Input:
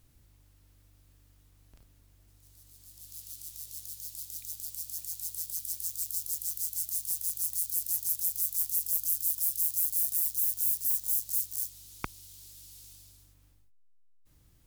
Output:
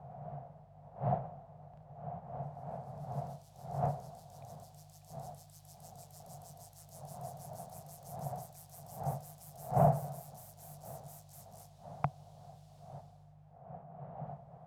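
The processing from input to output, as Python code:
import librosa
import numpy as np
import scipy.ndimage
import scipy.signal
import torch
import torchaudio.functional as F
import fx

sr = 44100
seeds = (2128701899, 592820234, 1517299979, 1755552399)

y = fx.block_float(x, sr, bits=7)
y = fx.dmg_wind(y, sr, seeds[0], corner_hz=530.0, level_db=-48.0)
y = fx.double_bandpass(y, sr, hz=320.0, octaves=2.3)
y = y * librosa.db_to_amplitude(16.5)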